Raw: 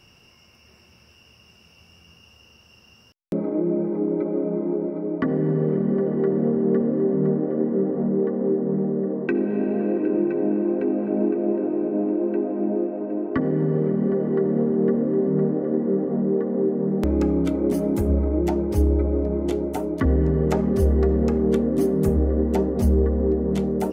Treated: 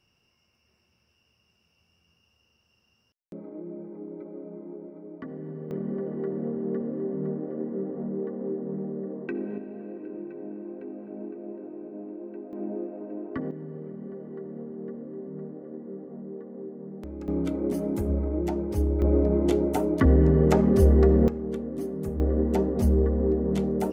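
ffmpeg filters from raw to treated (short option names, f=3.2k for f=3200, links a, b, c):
-af "asetnsamples=n=441:p=0,asendcmd='5.71 volume volume -9.5dB;9.58 volume volume -16dB;12.53 volume volume -9.5dB;13.51 volume volume -17dB;17.28 volume volume -6dB;19.02 volume volume 1dB;21.28 volume volume -11.5dB;22.2 volume volume -3dB',volume=-16dB"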